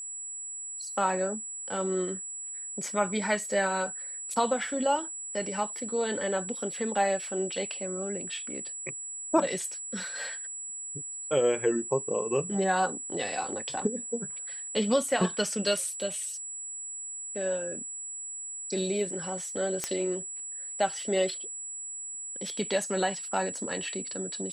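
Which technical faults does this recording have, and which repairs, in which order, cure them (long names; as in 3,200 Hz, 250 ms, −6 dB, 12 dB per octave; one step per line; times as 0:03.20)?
whistle 7,800 Hz −36 dBFS
0:19.84: click −13 dBFS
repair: click removal
notch filter 7,800 Hz, Q 30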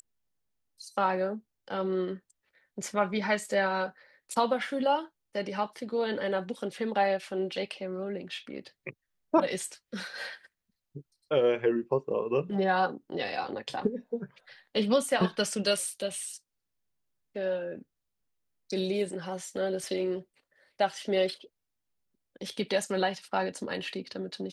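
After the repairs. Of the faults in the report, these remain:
none of them is left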